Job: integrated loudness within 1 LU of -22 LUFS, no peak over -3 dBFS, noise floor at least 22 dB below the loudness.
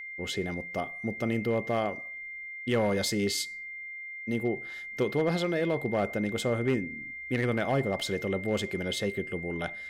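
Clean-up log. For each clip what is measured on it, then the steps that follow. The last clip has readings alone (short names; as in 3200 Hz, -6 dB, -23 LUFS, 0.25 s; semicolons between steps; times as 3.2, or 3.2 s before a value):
clipped 0.4%; flat tops at -19.5 dBFS; steady tone 2100 Hz; tone level -38 dBFS; loudness -30.5 LUFS; peak -19.5 dBFS; loudness target -22.0 LUFS
-> clip repair -19.5 dBFS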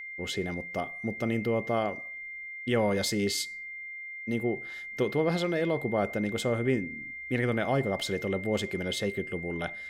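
clipped 0.0%; steady tone 2100 Hz; tone level -38 dBFS
-> notch 2100 Hz, Q 30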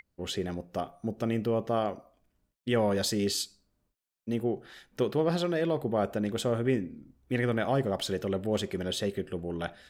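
steady tone none; loudness -30.5 LUFS; peak -15.5 dBFS; loudness target -22.0 LUFS
-> gain +8.5 dB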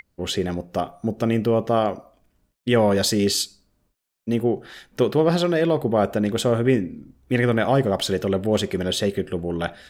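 loudness -22.0 LUFS; peak -7.0 dBFS; noise floor -71 dBFS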